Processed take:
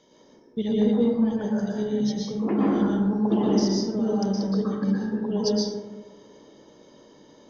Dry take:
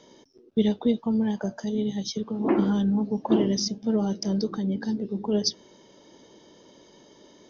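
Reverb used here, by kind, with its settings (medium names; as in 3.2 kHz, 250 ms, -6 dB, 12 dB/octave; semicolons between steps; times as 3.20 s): plate-style reverb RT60 1.4 s, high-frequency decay 0.3×, pre-delay 105 ms, DRR -6 dB; trim -6 dB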